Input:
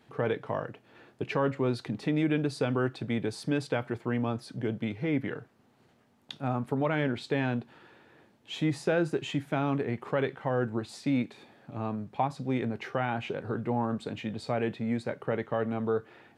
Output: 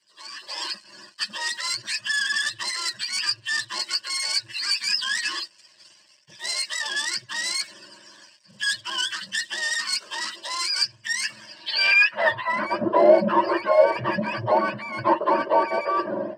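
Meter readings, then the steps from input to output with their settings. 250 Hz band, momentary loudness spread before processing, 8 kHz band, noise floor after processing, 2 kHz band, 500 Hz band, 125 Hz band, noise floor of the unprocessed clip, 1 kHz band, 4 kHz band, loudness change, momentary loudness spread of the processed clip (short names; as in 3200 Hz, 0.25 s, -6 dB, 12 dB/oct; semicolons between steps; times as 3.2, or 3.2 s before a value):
-3.0 dB, 7 LU, +21.5 dB, -56 dBFS, +14.0 dB, +7.0 dB, -9.5 dB, -64 dBFS, +10.0 dB, +19.5 dB, +8.0 dB, 12 LU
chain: spectrum mirrored in octaves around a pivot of 720 Hz; in parallel at -6.5 dB: soft clip -34 dBFS, distortion -8 dB; on the sum: dynamic EQ 2100 Hz, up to +7 dB, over -45 dBFS, Q 1.1; reverse; compressor 6:1, threshold -37 dBFS, peak gain reduction 17 dB; reverse; sample leveller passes 2; band-pass sweep 6500 Hz -> 590 Hz, 11.43–12.66; AGC gain up to 14 dB; ripple EQ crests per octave 1.3, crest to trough 13 dB; gain +7.5 dB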